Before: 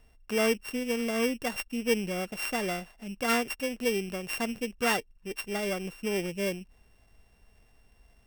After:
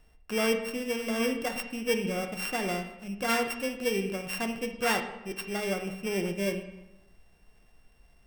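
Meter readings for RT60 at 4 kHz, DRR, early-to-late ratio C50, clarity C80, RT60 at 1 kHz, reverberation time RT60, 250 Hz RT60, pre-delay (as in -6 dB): 0.70 s, 4.5 dB, 8.5 dB, 10.5 dB, 0.95 s, 0.95 s, 1.1 s, 6 ms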